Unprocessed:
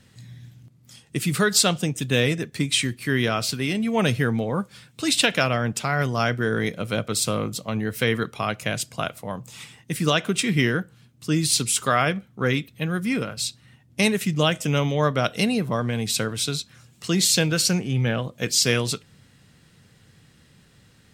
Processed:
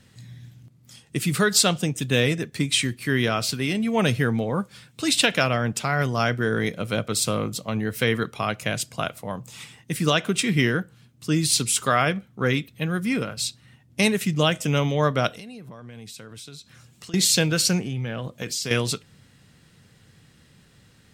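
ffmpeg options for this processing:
-filter_complex "[0:a]asettb=1/sr,asplit=3[a][b][c];[a]atrim=end=15.324[d];[b]atrim=start=15.32:end=17.14,asetpts=PTS-STARTPTS,afade=t=in:d=0.004:c=qsin,afade=t=out:st=1.816:d=0.004:c=qsin,acompressor=threshold=-39dB:ratio=6:attack=3.2:release=140:knee=1:detection=peak[e];[c]atrim=start=17.136[f];[d][e]acrossfade=d=0.004:c1=hsin:c2=qsin[g];[g][f]acrossfade=d=0.004:c1=qsin:c2=hsin,asettb=1/sr,asplit=3[h][i][j];[h]atrim=end=17.814[k];[i]atrim=start=17.81:end=18.71,asetpts=PTS-STARTPTS,afade=t=in:d=0.004:c=qsin,afade=t=out:st=0.896:d=0.004:c=qsin,acompressor=threshold=-25dB:ratio=6:attack=3.2:release=140:knee=1:detection=peak[l];[j]atrim=start=18.706[m];[k][l]acrossfade=d=0.004:c1=hsin:c2=qsin[n];[n][m]acrossfade=d=0.004:c1=qsin:c2=hsin"

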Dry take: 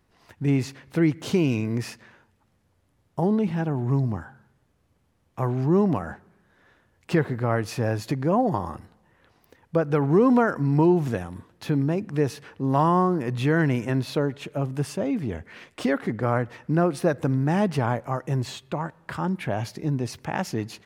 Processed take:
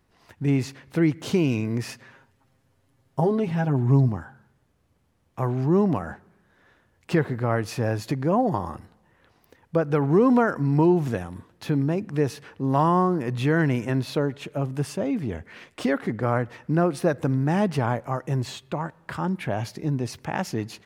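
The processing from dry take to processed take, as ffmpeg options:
-filter_complex "[0:a]asettb=1/sr,asplit=3[a][b][c];[a]atrim=end=1.884[d];[b]atrim=start=1.88:end=4.09,asetpts=PTS-STARTPTS,afade=t=in:d=0.004:c=qsin,afade=t=out:st=2.206:d=0.004:c=qsin,aecho=1:1:7.5:0.76,atrim=end_sample=97461[e];[c]atrim=start=4.086[f];[d][e]acrossfade=d=0.004:c1=hsin:c2=qsin[g];[g][f]acrossfade=d=0.004:c1=qsin:c2=hsin"

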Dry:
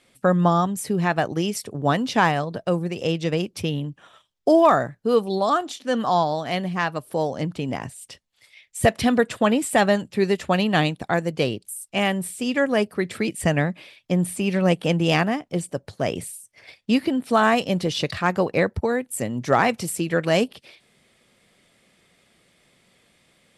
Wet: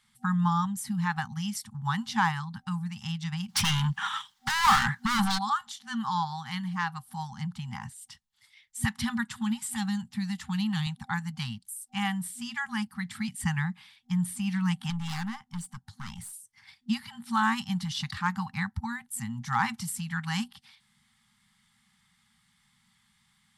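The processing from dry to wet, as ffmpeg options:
-filter_complex "[0:a]asplit=3[a][b][c];[a]afade=t=out:st=3.48:d=0.02[d];[b]asplit=2[e][f];[f]highpass=f=720:p=1,volume=34dB,asoftclip=type=tanh:threshold=-6.5dB[g];[e][g]amix=inputs=2:normalize=0,lowpass=f=4.4k:p=1,volume=-6dB,afade=t=in:st=3.48:d=0.02,afade=t=out:st=5.37:d=0.02[h];[c]afade=t=in:st=5.37:d=0.02[i];[d][h][i]amix=inputs=3:normalize=0,asettb=1/sr,asplit=3[j][k][l];[j]atrim=end=9.284[m];[k]atrim=start=9.28:end=10.87,asetpts=PTS-STARTPTS,afade=t=in:d=0.004:c=qsin,afade=t=out:st=1.586:d=0.004:c=qsin,acrossover=split=430|3000[n][o][p];[o]acompressor=threshold=-30dB:ratio=6:attack=3.2:release=140:knee=2.83:detection=peak[q];[n][q][p]amix=inputs=3:normalize=0[r];[l]atrim=start=10.866[s];[m][r]acrossfade=d=0.004:c1=hsin:c2=qsin[t];[t][s]acrossfade=d=0.004:c1=qsin:c2=hsin,asettb=1/sr,asplit=3[u][v][w];[u]atrim=end=14.904[x];[v]atrim=start=14.9:end=16.33,asetpts=PTS-STARTPTS,afade=t=in:d=0.004:c=qsin,afade=t=out:st=1.426:d=0.004:c=qsin,aeval=exprs='(tanh(12.6*val(0)+0.4)-tanh(0.4))/12.6':c=same[y];[w]atrim=start=16.326[z];[x][y]acrossfade=d=0.004:c1=hsin:c2=qsin[aa];[aa][z]acrossfade=d=0.004:c1=qsin:c2=hsin,afftfilt=real='re*(1-between(b*sr/4096,240,770))':imag='im*(1-between(b*sr/4096,240,770))':win_size=4096:overlap=0.75,equalizer=f=2.5k:t=o:w=0.26:g=-9,volume=-5.5dB"

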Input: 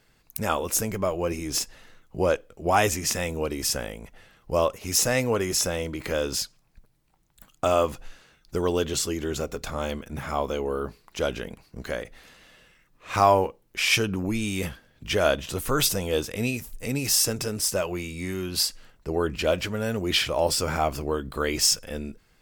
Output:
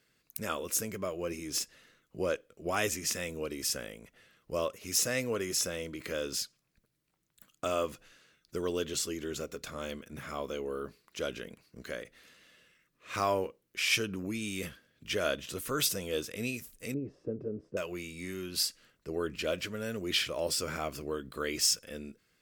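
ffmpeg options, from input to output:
-filter_complex "[0:a]asettb=1/sr,asplit=3[a][b][c];[a]atrim=end=16.944[d];[b]atrim=start=16.94:end=17.77,asetpts=PTS-STARTPTS,afade=t=in:d=0.004:c=qsin,afade=t=out:st=0.826:d=0.004:c=qsin,lowpass=f=430:t=q:w=1.5[e];[c]atrim=start=17.766[f];[d][e]acrossfade=d=0.004:c1=hsin:c2=qsin[g];[g][f]acrossfade=d=0.004:c1=qsin:c2=hsin,highpass=f=200:p=1,equalizer=f=830:w=2.5:g=-11.5,volume=-6dB"

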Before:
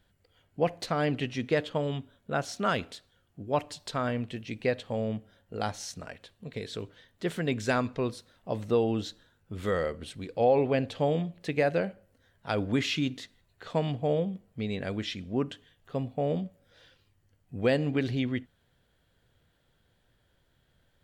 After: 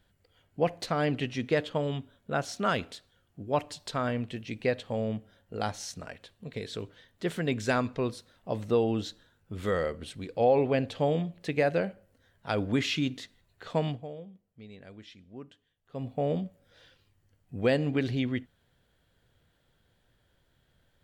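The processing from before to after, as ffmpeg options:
-filter_complex "[0:a]asplit=3[a][b][c];[a]atrim=end=14.14,asetpts=PTS-STARTPTS,afade=t=out:st=13.88:d=0.26:c=qua:silence=0.16788[d];[b]atrim=start=14.14:end=15.81,asetpts=PTS-STARTPTS,volume=-15.5dB[e];[c]atrim=start=15.81,asetpts=PTS-STARTPTS,afade=t=in:d=0.26:c=qua:silence=0.16788[f];[d][e][f]concat=n=3:v=0:a=1"

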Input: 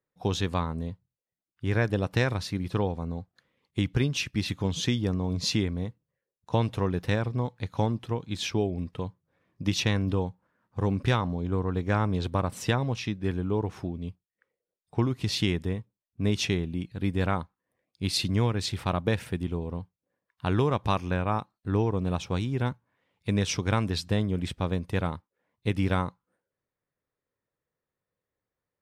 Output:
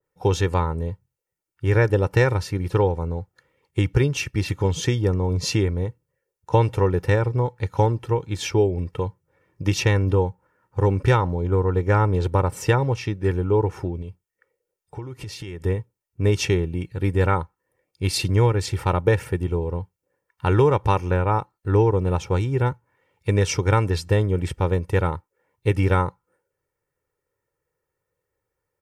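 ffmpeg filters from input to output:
-filter_complex "[0:a]asettb=1/sr,asplit=3[a][b][c];[a]atrim=end=14.024[d];[b]atrim=start=14.02:end=15.63,asetpts=PTS-STARTPTS,afade=t=in:d=0.004:c=qsin,afade=t=out:st=1.606:d=0.004:c=qsin,acompressor=threshold=-37dB:ratio=6:attack=3.2:release=140:knee=1:detection=peak[e];[c]atrim=start=15.626[f];[d][e]acrossfade=d=0.004:c1=hsin:c2=qsin[g];[g][f]acrossfade=d=0.004:c1=qsin:c2=hsin,equalizer=f=3.8k:w=2.2:g=-9,aecho=1:1:2.2:0.67,adynamicequalizer=threshold=0.00794:dfrequency=1600:dqfactor=0.7:tfrequency=1600:tqfactor=0.7:attack=5:release=100:ratio=0.375:range=1.5:mode=cutabove:tftype=highshelf,volume=6dB"

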